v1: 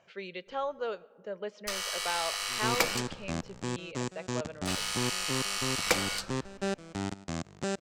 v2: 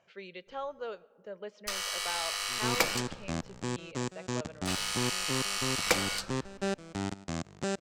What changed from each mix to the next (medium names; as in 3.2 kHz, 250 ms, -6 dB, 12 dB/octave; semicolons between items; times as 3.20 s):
speech -4.5 dB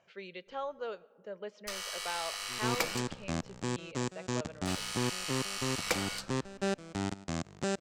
first sound -5.0 dB